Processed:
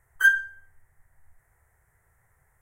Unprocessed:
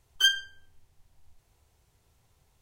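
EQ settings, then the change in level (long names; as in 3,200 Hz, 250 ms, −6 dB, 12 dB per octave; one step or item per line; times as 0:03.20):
drawn EQ curve 140 Hz 0 dB, 240 Hz −9 dB, 570 Hz +1 dB, 1,100 Hz +3 dB, 1,900 Hz +14 dB, 2,700 Hz −15 dB, 4,200 Hz −24 dB, 8,500 Hz +2 dB
0.0 dB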